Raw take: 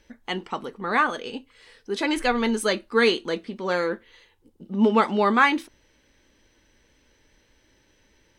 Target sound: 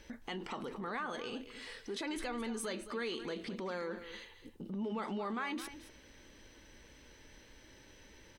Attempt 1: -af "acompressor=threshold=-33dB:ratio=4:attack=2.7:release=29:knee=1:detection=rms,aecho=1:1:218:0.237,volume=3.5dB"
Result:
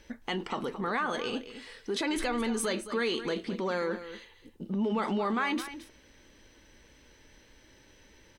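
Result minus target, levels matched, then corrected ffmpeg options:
downward compressor: peak gain reduction −8.5 dB
-af "acompressor=threshold=-44.5dB:ratio=4:attack=2.7:release=29:knee=1:detection=rms,aecho=1:1:218:0.237,volume=3.5dB"

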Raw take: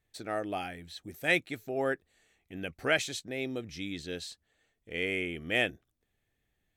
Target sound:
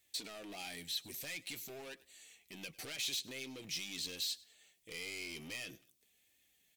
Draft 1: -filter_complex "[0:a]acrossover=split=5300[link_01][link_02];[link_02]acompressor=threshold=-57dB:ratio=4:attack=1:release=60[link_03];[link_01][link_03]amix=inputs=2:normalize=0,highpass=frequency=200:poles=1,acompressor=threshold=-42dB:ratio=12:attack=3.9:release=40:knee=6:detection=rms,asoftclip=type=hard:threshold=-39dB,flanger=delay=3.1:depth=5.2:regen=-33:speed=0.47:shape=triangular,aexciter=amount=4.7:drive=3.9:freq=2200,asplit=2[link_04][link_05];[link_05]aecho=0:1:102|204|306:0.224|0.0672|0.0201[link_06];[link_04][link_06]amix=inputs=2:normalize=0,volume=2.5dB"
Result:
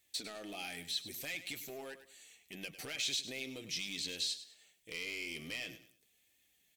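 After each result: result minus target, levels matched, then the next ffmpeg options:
echo-to-direct +9 dB; hard clipping: distortion −9 dB
-filter_complex "[0:a]acrossover=split=5300[link_01][link_02];[link_02]acompressor=threshold=-57dB:ratio=4:attack=1:release=60[link_03];[link_01][link_03]amix=inputs=2:normalize=0,highpass=frequency=200:poles=1,acompressor=threshold=-42dB:ratio=12:attack=3.9:release=40:knee=6:detection=rms,asoftclip=type=hard:threshold=-39dB,flanger=delay=3.1:depth=5.2:regen=-33:speed=0.47:shape=triangular,aexciter=amount=4.7:drive=3.9:freq=2200,asplit=2[link_04][link_05];[link_05]aecho=0:1:102|204:0.0794|0.0238[link_06];[link_04][link_06]amix=inputs=2:normalize=0,volume=2.5dB"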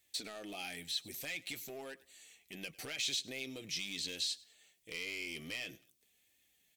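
hard clipping: distortion −9 dB
-filter_complex "[0:a]acrossover=split=5300[link_01][link_02];[link_02]acompressor=threshold=-57dB:ratio=4:attack=1:release=60[link_03];[link_01][link_03]amix=inputs=2:normalize=0,highpass=frequency=200:poles=1,acompressor=threshold=-42dB:ratio=12:attack=3.9:release=40:knee=6:detection=rms,asoftclip=type=hard:threshold=-45.5dB,flanger=delay=3.1:depth=5.2:regen=-33:speed=0.47:shape=triangular,aexciter=amount=4.7:drive=3.9:freq=2200,asplit=2[link_04][link_05];[link_05]aecho=0:1:102|204:0.0794|0.0238[link_06];[link_04][link_06]amix=inputs=2:normalize=0,volume=2.5dB"

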